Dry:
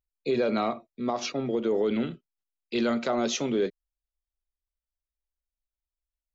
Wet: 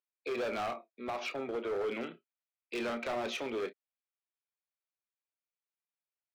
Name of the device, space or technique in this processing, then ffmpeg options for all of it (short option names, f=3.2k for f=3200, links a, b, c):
megaphone: -filter_complex "[0:a]highpass=460,lowpass=2.7k,equalizer=f=2.4k:t=o:w=0.22:g=6.5,asoftclip=type=hard:threshold=-30dB,asplit=2[a][b];[b]adelay=30,volume=-11dB[c];[a][c]amix=inputs=2:normalize=0,volume=-2dB"